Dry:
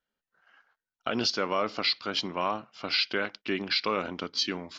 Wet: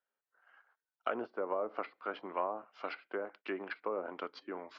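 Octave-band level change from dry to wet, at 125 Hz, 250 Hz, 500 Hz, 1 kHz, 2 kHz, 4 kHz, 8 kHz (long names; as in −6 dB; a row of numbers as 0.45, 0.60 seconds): below −15 dB, −11.0 dB, −4.5 dB, −7.0 dB, −12.0 dB, −26.5 dB, can't be measured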